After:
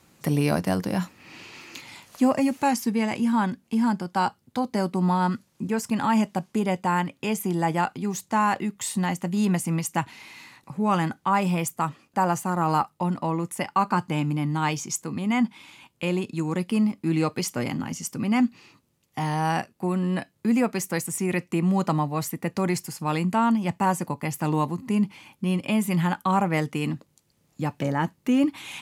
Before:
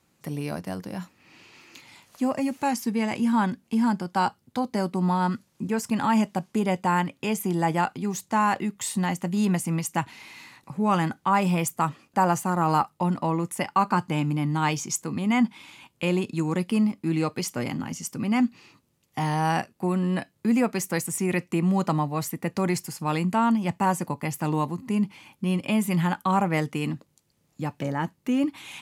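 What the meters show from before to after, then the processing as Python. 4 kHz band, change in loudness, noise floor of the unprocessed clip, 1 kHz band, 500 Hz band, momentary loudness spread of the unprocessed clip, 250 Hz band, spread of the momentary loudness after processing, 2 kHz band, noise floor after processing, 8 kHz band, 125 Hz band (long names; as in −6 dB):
+0.5 dB, +0.5 dB, −69 dBFS, 0.0 dB, +0.5 dB, 8 LU, +0.5 dB, 7 LU, +0.5 dB, −68 dBFS, 0.0 dB, +0.5 dB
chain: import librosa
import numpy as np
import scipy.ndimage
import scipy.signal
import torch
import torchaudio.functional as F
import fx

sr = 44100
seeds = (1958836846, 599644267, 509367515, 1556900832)

y = fx.rider(x, sr, range_db=10, speed_s=2.0)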